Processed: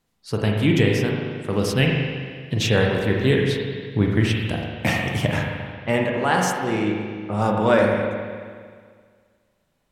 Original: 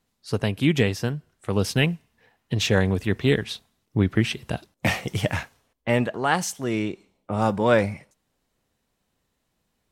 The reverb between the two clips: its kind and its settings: spring tank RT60 1.9 s, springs 38/44 ms, chirp 70 ms, DRR -0.5 dB

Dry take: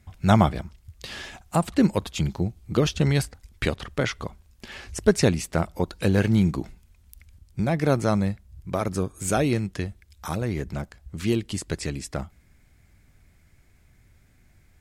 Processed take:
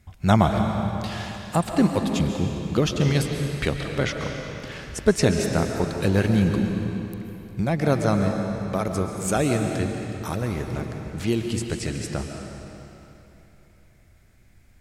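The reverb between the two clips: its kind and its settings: algorithmic reverb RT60 3.2 s, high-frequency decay 0.9×, pre-delay 95 ms, DRR 3.5 dB

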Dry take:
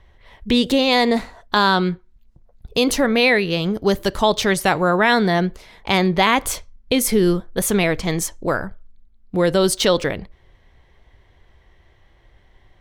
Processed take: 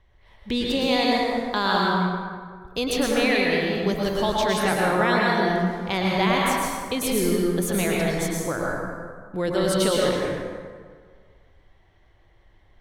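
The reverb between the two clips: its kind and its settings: plate-style reverb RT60 1.8 s, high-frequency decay 0.55×, pre-delay 95 ms, DRR -3.5 dB; trim -9 dB

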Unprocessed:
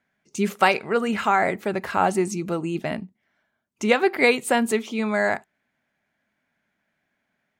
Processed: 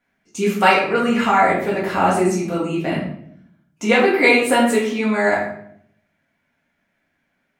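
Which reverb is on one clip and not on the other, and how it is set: simulated room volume 120 m³, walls mixed, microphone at 1.8 m; trim -2 dB

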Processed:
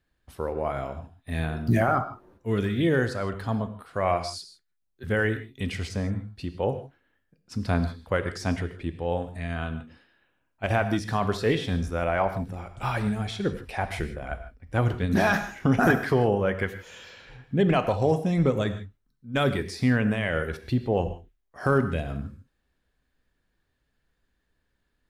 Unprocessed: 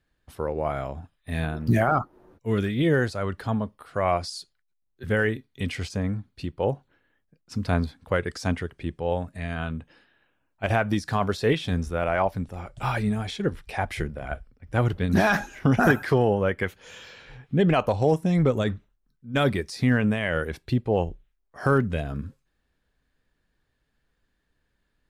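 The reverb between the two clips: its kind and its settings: gated-style reverb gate 180 ms flat, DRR 9.5 dB; trim -1.5 dB

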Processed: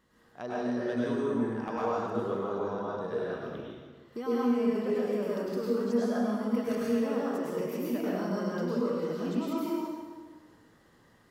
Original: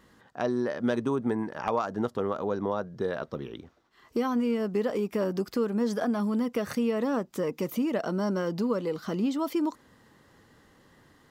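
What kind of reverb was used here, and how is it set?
plate-style reverb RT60 1.5 s, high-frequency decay 0.8×, pre-delay 90 ms, DRR -7 dB; trim -10.5 dB

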